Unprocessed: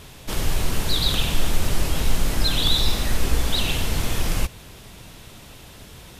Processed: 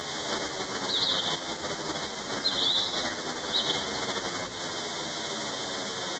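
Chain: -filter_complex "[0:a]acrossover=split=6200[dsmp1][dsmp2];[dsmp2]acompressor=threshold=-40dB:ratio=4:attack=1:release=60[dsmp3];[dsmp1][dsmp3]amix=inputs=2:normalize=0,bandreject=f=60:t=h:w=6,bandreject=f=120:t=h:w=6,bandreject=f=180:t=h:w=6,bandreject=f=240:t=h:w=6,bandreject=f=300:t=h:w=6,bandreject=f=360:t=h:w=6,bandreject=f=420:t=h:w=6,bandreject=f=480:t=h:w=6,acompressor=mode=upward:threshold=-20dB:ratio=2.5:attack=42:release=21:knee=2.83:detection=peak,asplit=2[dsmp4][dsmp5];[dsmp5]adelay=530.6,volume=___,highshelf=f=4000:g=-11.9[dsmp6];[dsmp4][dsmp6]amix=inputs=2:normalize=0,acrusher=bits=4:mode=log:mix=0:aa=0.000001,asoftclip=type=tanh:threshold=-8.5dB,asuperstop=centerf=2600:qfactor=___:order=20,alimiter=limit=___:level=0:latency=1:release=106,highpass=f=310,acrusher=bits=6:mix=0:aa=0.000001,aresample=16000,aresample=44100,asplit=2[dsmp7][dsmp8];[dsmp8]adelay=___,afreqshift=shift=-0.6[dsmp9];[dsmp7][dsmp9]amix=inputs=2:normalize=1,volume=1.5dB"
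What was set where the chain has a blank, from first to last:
-28dB, 3.1, -11.5dB, 9.7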